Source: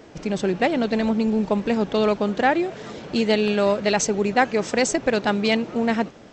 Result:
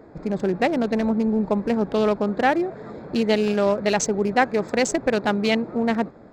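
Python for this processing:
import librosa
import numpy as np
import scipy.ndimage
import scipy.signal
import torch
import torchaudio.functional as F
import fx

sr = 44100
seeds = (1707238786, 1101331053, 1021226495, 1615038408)

y = fx.wiener(x, sr, points=15)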